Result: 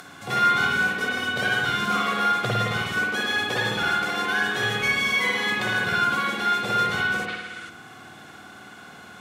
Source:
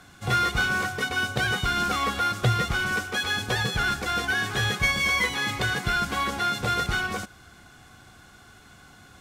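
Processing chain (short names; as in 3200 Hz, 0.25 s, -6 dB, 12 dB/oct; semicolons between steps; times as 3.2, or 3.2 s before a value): HPF 180 Hz 12 dB/oct; spring tank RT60 1.1 s, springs 53 ms, chirp 35 ms, DRR -4.5 dB; upward compressor, threshold -33 dBFS; spectral gain 7.29–7.69, 1200–11000 Hz +8 dB; gain -3 dB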